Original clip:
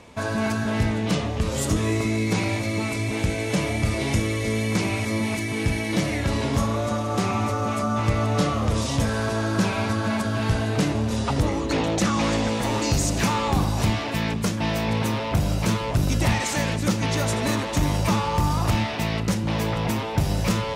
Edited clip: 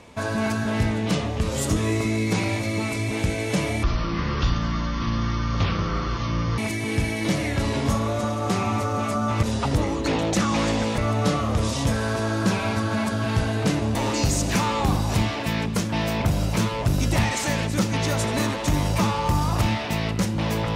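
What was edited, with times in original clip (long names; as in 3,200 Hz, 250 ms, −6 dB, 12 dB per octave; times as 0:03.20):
0:03.83–0:05.26: play speed 52%
0:11.08–0:12.63: move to 0:08.11
0:14.90–0:15.31: remove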